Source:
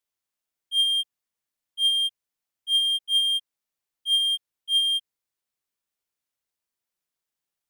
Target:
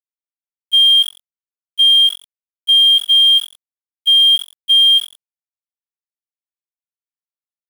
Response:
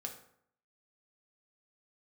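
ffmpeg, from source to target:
-filter_complex "[0:a]equalizer=frequency=2900:width=2.7:gain=14.5,asplit=2[link_01][link_02];[link_02]asplit=5[link_03][link_04][link_05][link_06][link_07];[link_03]adelay=89,afreqshift=45,volume=-20.5dB[link_08];[link_04]adelay=178,afreqshift=90,volume=-24.8dB[link_09];[link_05]adelay=267,afreqshift=135,volume=-29.1dB[link_10];[link_06]adelay=356,afreqshift=180,volume=-33.4dB[link_11];[link_07]adelay=445,afreqshift=225,volume=-37.7dB[link_12];[link_08][link_09][link_10][link_11][link_12]amix=inputs=5:normalize=0[link_13];[link_01][link_13]amix=inputs=2:normalize=0,alimiter=limit=-13dB:level=0:latency=1:release=17,aeval=exprs='val(0)*gte(abs(val(0)),0.0316)':channel_layout=same,agate=range=-12dB:threshold=-26dB:ratio=16:detection=peak,volume=6.5dB"

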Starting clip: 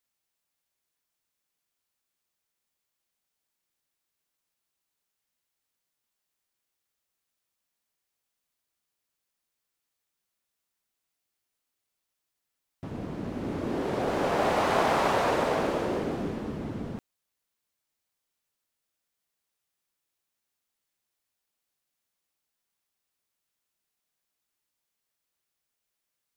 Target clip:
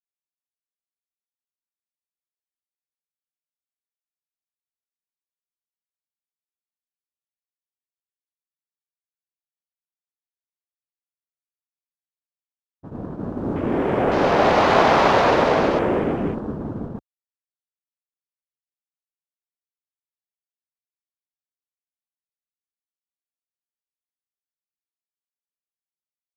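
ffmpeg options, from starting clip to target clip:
ffmpeg -i in.wav -af "afwtdn=0.00562,agate=range=-33dB:threshold=-30dB:ratio=3:detection=peak,volume=9dB" out.wav

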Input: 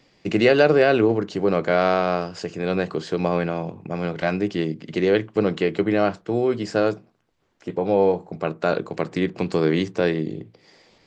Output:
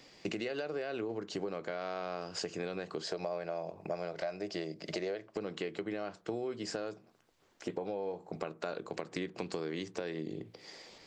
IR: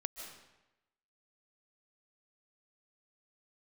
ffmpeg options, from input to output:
-filter_complex "[0:a]bass=frequency=250:gain=-6,treble=frequency=4000:gain=5,alimiter=limit=-15dB:level=0:latency=1:release=271,asettb=1/sr,asplit=3[link_01][link_02][link_03];[link_01]atrim=end=3.044[link_04];[link_02]atrim=start=3.04:end=5.37,asetpts=PTS-STARTPTS,afade=type=in:duration=0.004:curve=qsin,afade=type=out:start_time=2.326:duration=0.004:curve=qsin,equalizer=frequency=125:width_type=o:width=0.33:gain=-10,equalizer=frequency=250:width_type=o:width=0.33:gain=-11,equalizer=frequency=630:width_type=o:width=0.33:gain=12,equalizer=frequency=3150:width_type=o:width=0.33:gain=-5,equalizer=frequency=5000:width_type=o:width=0.33:gain=7[link_05];[link_03]atrim=start=5.366[link_06];[link_04][link_05]acrossfade=duration=0.004:curve1=hsin:curve2=qsin[link_07];[link_07][link_06]acrossfade=duration=0.004:curve1=qsin:curve2=hsin,acompressor=threshold=-36dB:ratio=6,volume=1dB"

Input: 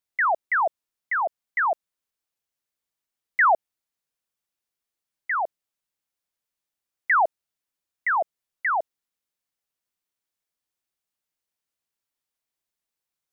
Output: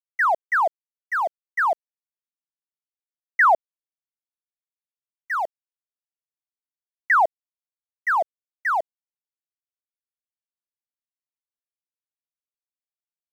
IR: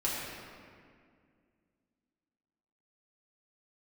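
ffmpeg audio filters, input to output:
-af "agate=range=-33dB:threshold=-23dB:ratio=3:detection=peak,aeval=exprs='sgn(val(0))*max(abs(val(0))-0.00422,0)':channel_layout=same,volume=2.5dB"

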